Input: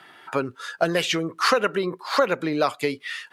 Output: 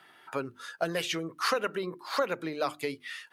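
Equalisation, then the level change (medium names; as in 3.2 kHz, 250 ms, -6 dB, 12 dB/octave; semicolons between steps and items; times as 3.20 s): treble shelf 12 kHz +10.5 dB; hum notches 50/100/150/200/250/300/350 Hz; band-stop 7.4 kHz, Q 22; -8.5 dB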